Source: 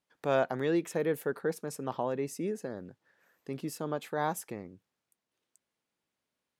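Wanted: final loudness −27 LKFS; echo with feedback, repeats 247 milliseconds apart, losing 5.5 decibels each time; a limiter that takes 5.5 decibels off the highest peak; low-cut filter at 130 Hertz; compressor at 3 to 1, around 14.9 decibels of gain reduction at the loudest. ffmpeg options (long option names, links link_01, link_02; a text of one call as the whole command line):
ffmpeg -i in.wav -af "highpass=130,acompressor=threshold=-45dB:ratio=3,alimiter=level_in=11dB:limit=-24dB:level=0:latency=1,volume=-11dB,aecho=1:1:247|494|741|988|1235|1482|1729:0.531|0.281|0.149|0.079|0.0419|0.0222|0.0118,volume=19.5dB" out.wav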